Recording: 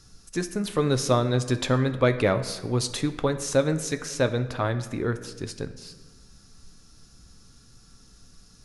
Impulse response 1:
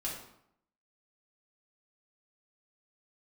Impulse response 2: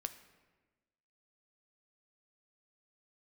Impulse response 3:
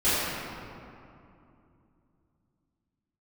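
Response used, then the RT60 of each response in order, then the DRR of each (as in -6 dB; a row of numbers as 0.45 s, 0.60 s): 2; 0.75 s, 1.3 s, 2.7 s; -5.5 dB, 8.5 dB, -16.0 dB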